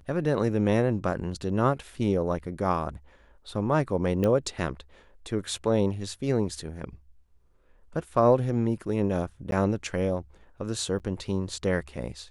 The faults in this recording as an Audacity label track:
4.240000	4.240000	pop -15 dBFS
9.510000	9.520000	dropout
10.990000	11.000000	dropout 8.6 ms

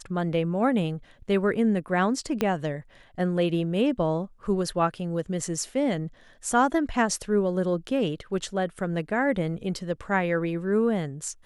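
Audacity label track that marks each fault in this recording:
2.410000	2.410000	pop -11 dBFS

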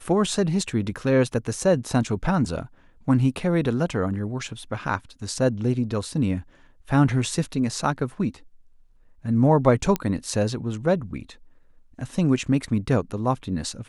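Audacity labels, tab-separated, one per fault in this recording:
9.960000	9.960000	pop -9 dBFS

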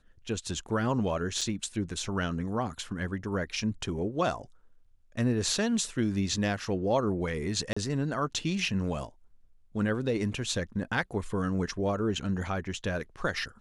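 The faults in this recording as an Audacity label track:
1.410000	1.410000	dropout 4.5 ms
7.730000	7.760000	dropout 35 ms

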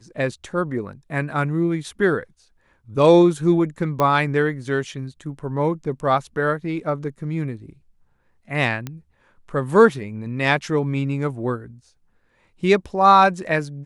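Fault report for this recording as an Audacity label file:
4.000000	4.000000	pop -9 dBFS
8.870000	8.870000	pop -15 dBFS

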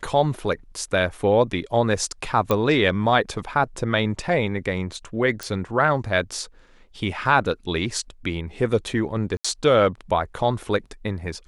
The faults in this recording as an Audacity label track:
2.510000	2.510000	pop -8 dBFS
5.430000	5.430000	pop
9.370000	9.450000	dropout 75 ms

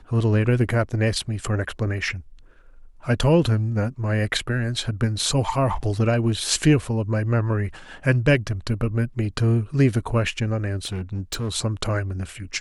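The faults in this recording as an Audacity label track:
10.840000	11.490000	clipped -23 dBFS

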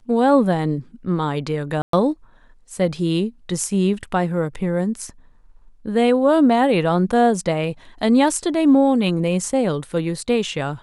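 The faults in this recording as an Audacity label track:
1.820000	1.930000	dropout 113 ms

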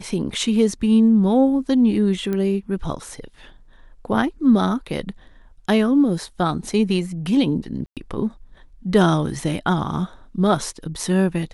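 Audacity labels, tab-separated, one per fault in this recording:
2.330000	2.330000	pop -14 dBFS
7.860000	7.970000	dropout 107 ms

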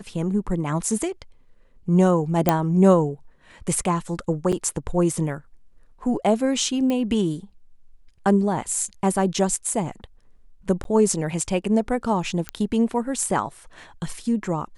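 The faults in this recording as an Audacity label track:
2.490000	2.490000	pop -3 dBFS
4.520000	4.530000	dropout 6.5 ms
6.900000	6.900000	pop -14 dBFS
10.840000	10.850000	dropout 12 ms
12.490000	12.490000	pop -12 dBFS

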